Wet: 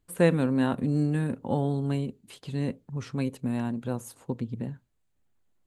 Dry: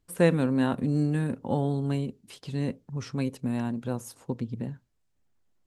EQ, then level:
parametric band 5,400 Hz −7 dB 0.3 octaves
0.0 dB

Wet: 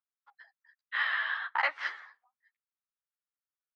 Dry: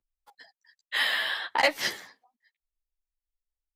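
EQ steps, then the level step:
high-pass with resonance 1,300 Hz, resonance Q 2.8
head-to-tape spacing loss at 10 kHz 41 dB
0.0 dB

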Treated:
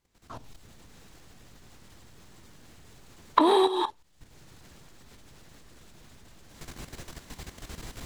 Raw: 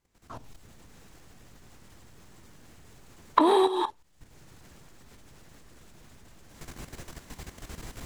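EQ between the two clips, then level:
parametric band 3,900 Hz +3.5 dB 0.94 octaves
0.0 dB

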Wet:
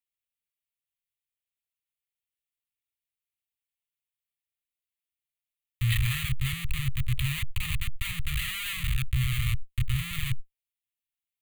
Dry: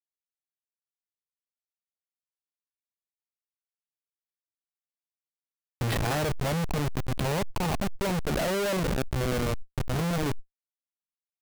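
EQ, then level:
Chebyshev band-stop filter 130–1,400 Hz, order 4
phaser with its sweep stopped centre 1,500 Hz, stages 6
+6.0 dB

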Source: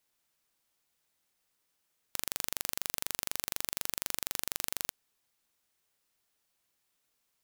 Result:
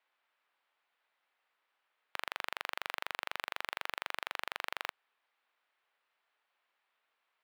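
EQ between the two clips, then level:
high-pass filter 830 Hz 12 dB per octave
high-frequency loss of the air 500 metres
+10.5 dB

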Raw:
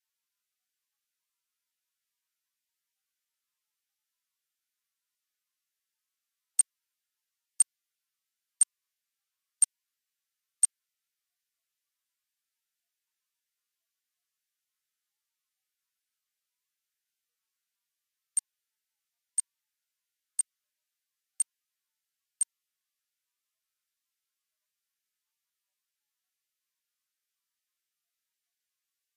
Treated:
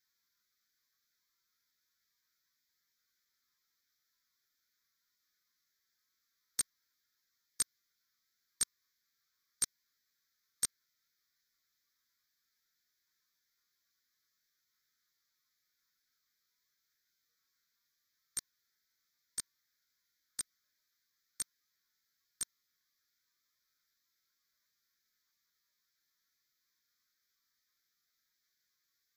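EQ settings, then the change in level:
phaser with its sweep stopped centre 2,800 Hz, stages 6
+9.0 dB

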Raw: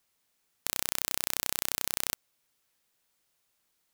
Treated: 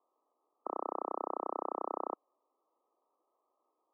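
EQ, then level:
Butterworth high-pass 300 Hz 36 dB per octave
linear-phase brick-wall low-pass 1,300 Hz
+8.0 dB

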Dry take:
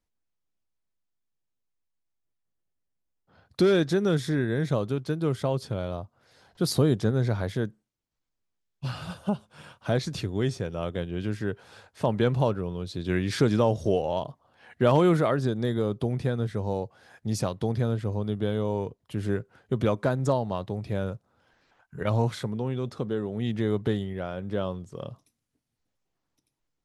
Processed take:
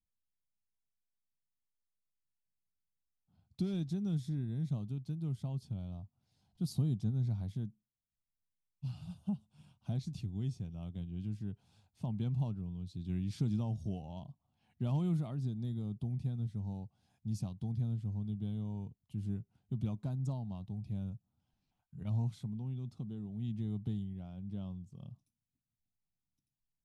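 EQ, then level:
drawn EQ curve 200 Hz 0 dB, 510 Hz −24 dB, 740 Hz −12 dB, 1,700 Hz −26 dB, 2,600 Hz −13 dB, 6,900 Hz −10 dB
−7.0 dB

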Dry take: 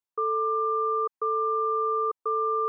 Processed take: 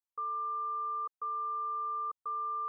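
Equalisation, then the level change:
phaser with its sweep stopped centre 980 Hz, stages 4
−7.0 dB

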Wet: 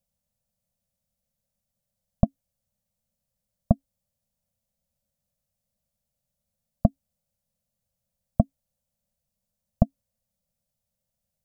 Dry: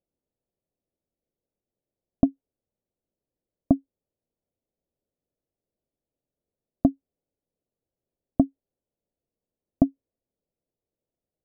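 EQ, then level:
elliptic band-stop filter 220–530 Hz
bass and treble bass +6 dB, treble +9 dB
+3.0 dB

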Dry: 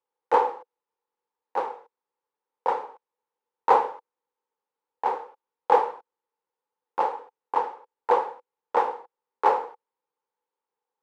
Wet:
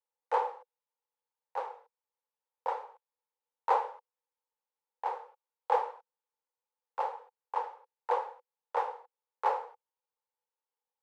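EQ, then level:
Chebyshev high-pass filter 520 Hz, order 3
−7.5 dB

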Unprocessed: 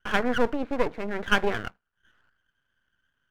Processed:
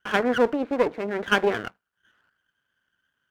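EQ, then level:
high-pass filter 160 Hz 6 dB per octave
dynamic equaliser 380 Hz, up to +5 dB, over −38 dBFS, Q 0.88
+1.0 dB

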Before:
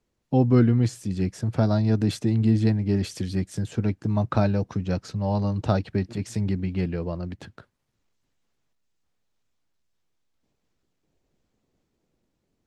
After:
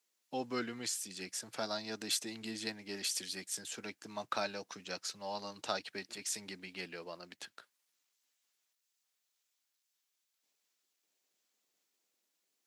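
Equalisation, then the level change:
high-pass filter 200 Hz 12 dB per octave
first difference
high-shelf EQ 4,700 Hz −5.5 dB
+9.0 dB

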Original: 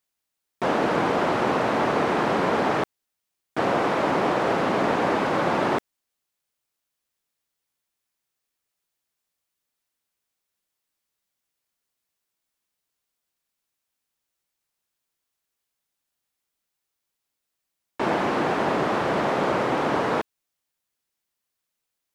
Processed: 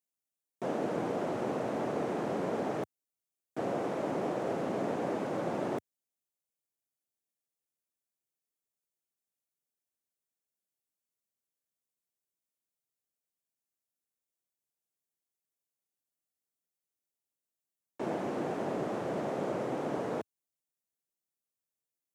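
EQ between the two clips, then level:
high-pass filter 92 Hz 24 dB per octave
flat-topped bell 2,100 Hz −8.5 dB 2.8 octaves
−9.0 dB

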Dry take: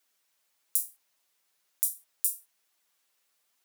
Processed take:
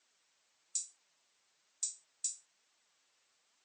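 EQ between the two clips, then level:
linear-phase brick-wall low-pass 8,300 Hz
+3.0 dB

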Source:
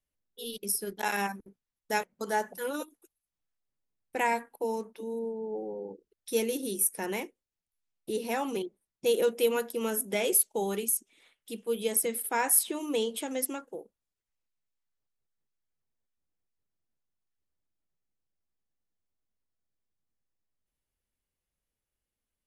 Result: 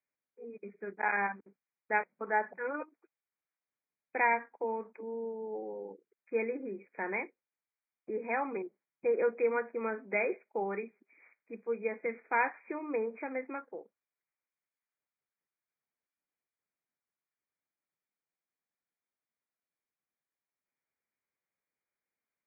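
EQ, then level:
high-pass filter 130 Hz
linear-phase brick-wall low-pass 2,500 Hz
spectral tilt +3 dB per octave
0.0 dB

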